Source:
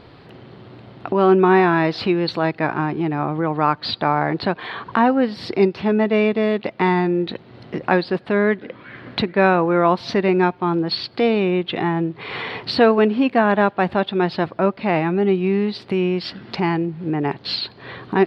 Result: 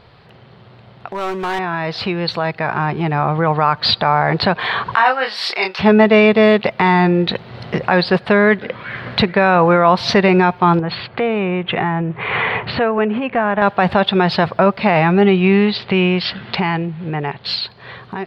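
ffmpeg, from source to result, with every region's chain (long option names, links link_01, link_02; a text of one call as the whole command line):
ffmpeg -i in.wav -filter_complex "[0:a]asettb=1/sr,asplit=3[link_01][link_02][link_03];[link_01]atrim=end=1.074[link_04];[link_02]atrim=start=1.07:end=1.59,asetpts=PTS-STARTPTS,afade=type=in:duration=0.004:curve=qsin,afade=type=out:start_time=0.516:duration=0.004:curve=qsin,lowshelf=frequency=340:gain=-8.5,asoftclip=type=hard:threshold=-16dB[link_05];[link_03]atrim=start=1.586[link_06];[link_04][link_05]acrossfade=duration=0.004:curve1=hsin:curve2=qsin[link_07];[link_07][link_06]acrossfade=duration=0.004:curve1=qsin:curve2=hsin,asettb=1/sr,asplit=3[link_08][link_09][link_10];[link_08]atrim=end=4.954[link_11];[link_09]atrim=start=4.95:end=5.79,asetpts=PTS-STARTPTS,afade=type=in:duration=0.004:curve=qsin,afade=type=out:start_time=0.836:duration=0.004:curve=qsin,highpass=980,asplit=2[link_12][link_13];[link_13]adelay=27,volume=-4.5dB[link_14];[link_12][link_14]amix=inputs=2:normalize=0,atrim=end_sample=37044[link_15];[link_10]atrim=start=5.786[link_16];[link_11][link_15]acrossfade=duration=0.004:curve1=hsin:curve2=qsin[link_17];[link_17][link_16]acrossfade=duration=0.004:curve1=qsin:curve2=hsin,asettb=1/sr,asplit=3[link_18][link_19][link_20];[link_18]atrim=end=10.794[link_21];[link_19]atrim=start=10.79:end=13.62,asetpts=PTS-STARTPTS,afade=type=in:duration=0.004:curve=qsin,afade=type=out:start_time=2.826:duration=0.004:curve=qsin,lowpass=frequency=2700:width=0.5412,lowpass=frequency=2700:width=1.3066,acompressor=threshold=-22dB:ratio=4:attack=3.2:release=140:knee=1:detection=peak[link_22];[link_20]atrim=start=13.616[link_23];[link_21][link_22]acrossfade=duration=0.004:curve1=hsin:curve2=qsin[link_24];[link_24][link_23]acrossfade=duration=0.004:curve1=qsin:curve2=hsin,asettb=1/sr,asplit=3[link_25][link_26][link_27];[link_25]atrim=end=15.214[link_28];[link_26]atrim=start=15.21:end=17.46,asetpts=PTS-STARTPTS,afade=type=in:duration=0.004:curve=qsin,afade=type=out:start_time=2.246:duration=0.004:curve=qsin,lowpass=frequency=3800:width=0.5412,lowpass=frequency=3800:width=1.3066,highshelf=frequency=3000:gain=7.5[link_29];[link_27]atrim=start=17.456[link_30];[link_28][link_29]acrossfade=duration=0.004:curve1=hsin:curve2=qsin[link_31];[link_31][link_30]acrossfade=duration=0.004:curve1=qsin:curve2=hsin,equalizer=frequency=300:width_type=o:width=0.67:gain=-13,alimiter=limit=-13.5dB:level=0:latency=1:release=40,dynaudnorm=framelen=810:gausssize=7:maxgain=14.5dB" out.wav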